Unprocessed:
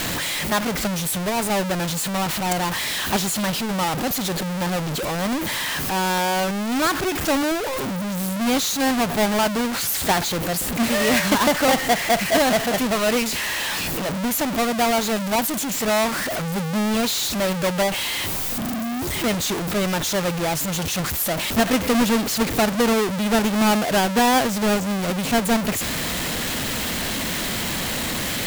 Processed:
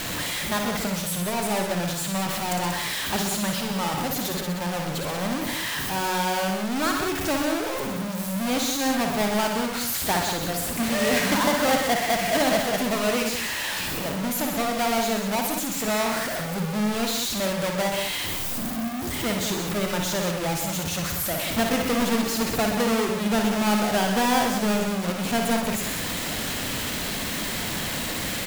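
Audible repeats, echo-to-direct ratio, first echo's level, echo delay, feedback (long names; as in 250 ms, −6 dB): 3, −2.0 dB, −6.5 dB, 57 ms, repeats not evenly spaced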